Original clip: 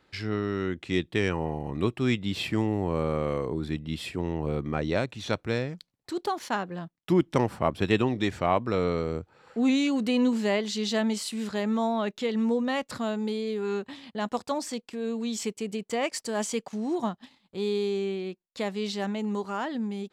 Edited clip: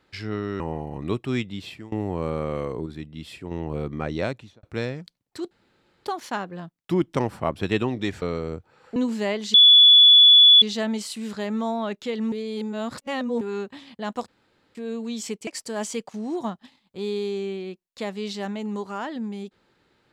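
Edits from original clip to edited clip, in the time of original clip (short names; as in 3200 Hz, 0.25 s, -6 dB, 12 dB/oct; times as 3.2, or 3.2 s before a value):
0.6–1.33 cut
2.04–2.65 fade out, to -22.5 dB
3.59–4.24 gain -5 dB
5.03–5.36 studio fade out
6.24 insert room tone 0.54 s
8.41–8.85 cut
9.59–10.2 cut
10.78 add tone 3430 Hz -8.5 dBFS 1.08 s
12.48–13.57 reverse
14.44–14.91 room tone
15.63–16.06 cut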